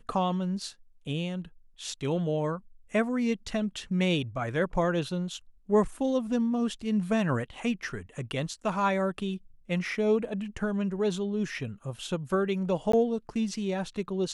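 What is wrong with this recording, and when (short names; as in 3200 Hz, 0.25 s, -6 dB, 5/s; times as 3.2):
12.92–12.93 gap 14 ms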